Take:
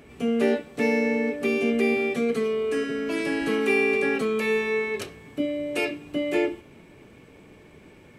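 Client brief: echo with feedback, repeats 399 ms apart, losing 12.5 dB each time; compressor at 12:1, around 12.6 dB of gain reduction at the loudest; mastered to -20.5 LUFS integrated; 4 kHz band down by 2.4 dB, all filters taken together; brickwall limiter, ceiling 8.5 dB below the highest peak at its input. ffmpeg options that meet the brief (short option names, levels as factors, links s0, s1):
-af "equalizer=f=4000:t=o:g=-3.5,acompressor=threshold=0.0282:ratio=12,alimiter=level_in=1.88:limit=0.0631:level=0:latency=1,volume=0.531,aecho=1:1:399|798|1197:0.237|0.0569|0.0137,volume=7.08"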